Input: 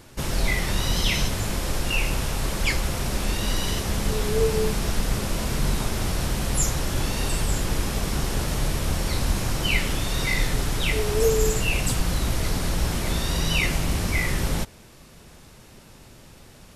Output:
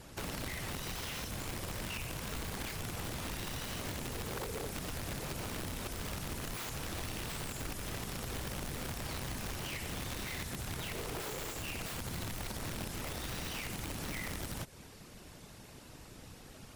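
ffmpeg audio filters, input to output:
ffmpeg -i in.wav -filter_complex "[0:a]afftfilt=real='hypot(re,im)*cos(2*PI*random(0))':imag='hypot(re,im)*sin(2*PI*random(1))':win_size=512:overlap=0.75,acrossover=split=6300[link_01][link_02];[link_01]acompressor=threshold=-36dB:ratio=16[link_03];[link_03][link_02]amix=inputs=2:normalize=0,aeval=exprs='(mod(42.2*val(0)+1,2)-1)/42.2':channel_layout=same,acrossover=split=3800[link_04][link_05];[link_05]acompressor=threshold=-45dB:ratio=4:attack=1:release=60[link_06];[link_04][link_06]amix=inputs=2:normalize=0,volume=2dB" out.wav

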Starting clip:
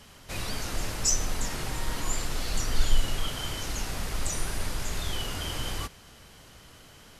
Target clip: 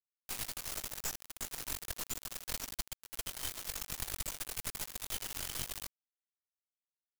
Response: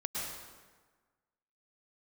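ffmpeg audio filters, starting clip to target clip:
-af "aemphasis=mode=production:type=75fm,acompressor=threshold=-33dB:ratio=12,flanger=delay=19:depth=4.3:speed=1.9,acrusher=bits=3:dc=4:mix=0:aa=0.000001,volume=1.5dB"

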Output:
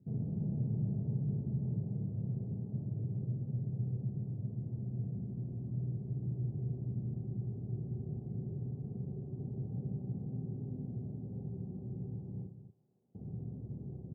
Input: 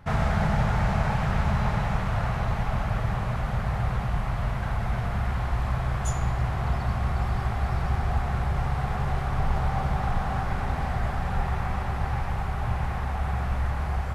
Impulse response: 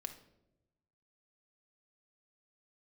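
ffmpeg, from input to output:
-filter_complex "[0:a]asettb=1/sr,asplit=3[link_01][link_02][link_03];[link_01]atrim=end=12.464[link_04];[link_02]atrim=start=12.46:end=13.15,asetpts=PTS-STARTPTS,afade=type=in:duration=0.004:curve=qsin,afade=type=out:start_time=0.686:duration=0.004:curve=qsin,aderivative[link_05];[link_03]atrim=start=13.146[link_06];[link_04][link_05]acrossfade=duration=0.004:curve1=hsin:curve2=qsin[link_07];[link_07][link_06]acrossfade=duration=0.004:curve1=qsin:curve2=hsin,asuperpass=centerf=210:order=8:qfactor=0.73,aecho=1:1:55.39|236.2:0.501|0.316,volume=-6.5dB"

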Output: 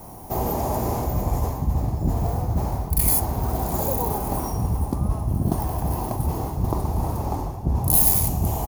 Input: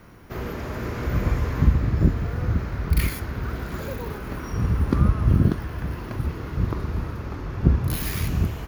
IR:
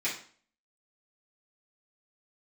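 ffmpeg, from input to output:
-af "areverse,acompressor=threshold=-25dB:ratio=6,areverse,firequalizer=gain_entry='entry(500,0);entry(780,14);entry(1400,-14);entry(8300,14)':delay=0.05:min_phase=1,volume=5.5dB"

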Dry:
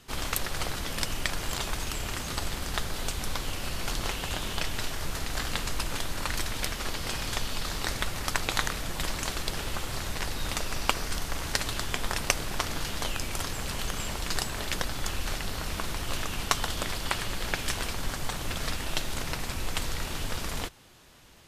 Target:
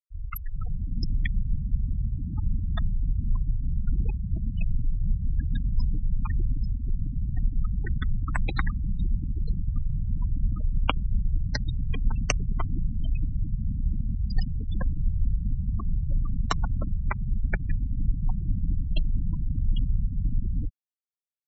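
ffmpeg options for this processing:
ffmpeg -i in.wav -filter_complex "[0:a]afreqshift=16,anlmdn=0.01,acrossover=split=280|2700[link_01][link_02][link_03];[link_01]dynaudnorm=framelen=470:gausssize=3:maxgain=8dB[link_04];[link_04][link_02][link_03]amix=inputs=3:normalize=0,afftfilt=real='re*gte(hypot(re,im),0.112)':imag='im*gte(hypot(re,im),0.112)':win_size=1024:overlap=0.75" out.wav

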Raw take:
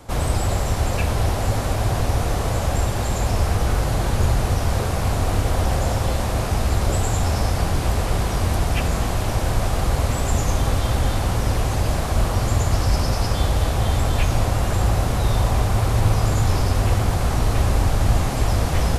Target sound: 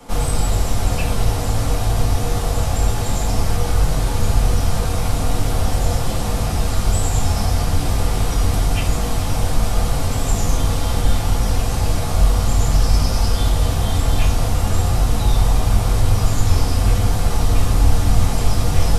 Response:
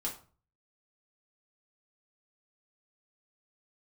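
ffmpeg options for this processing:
-filter_complex "[0:a]acrossover=split=120|3000[link_01][link_02][link_03];[link_02]acompressor=threshold=-39dB:ratio=1.5[link_04];[link_01][link_04][link_03]amix=inputs=3:normalize=0[link_05];[1:a]atrim=start_sample=2205,asetrate=43659,aresample=44100[link_06];[link_05][link_06]afir=irnorm=-1:irlink=0,volume=2.5dB"

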